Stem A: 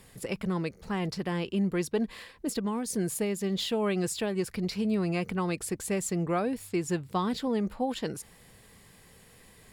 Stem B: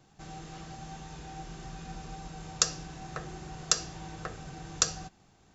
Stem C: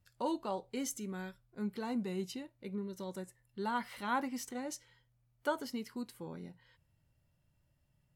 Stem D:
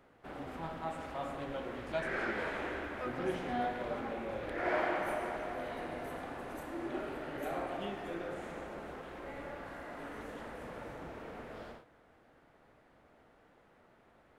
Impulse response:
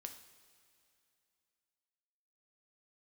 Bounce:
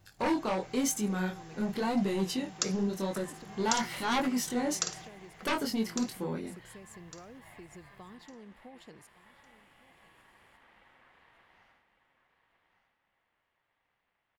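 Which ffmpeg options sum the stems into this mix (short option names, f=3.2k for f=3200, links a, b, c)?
-filter_complex "[0:a]adelay=850,volume=-17.5dB,asplit=2[a][b];[b]volume=-21.5dB[c];[1:a]highpass=190,volume=-6.5dB,asplit=2[d][e];[e]volume=-7.5dB[f];[2:a]aeval=exprs='0.0944*sin(PI/2*3.55*val(0)/0.0944)':c=same,flanger=delay=19.5:depth=7.7:speed=0.94,volume=-1.5dB[g];[3:a]aeval=exprs='val(0)*sin(2*PI*1400*n/s)':c=same,volume=-14.5dB,asplit=2[h][i];[i]volume=-10.5dB[j];[a][h]amix=inputs=2:normalize=0,acompressor=threshold=-46dB:ratio=6,volume=0dB[k];[c][f][j]amix=inputs=3:normalize=0,aecho=0:1:1155|2310|3465|4620:1|0.27|0.0729|0.0197[l];[d][g][k][l]amix=inputs=4:normalize=0"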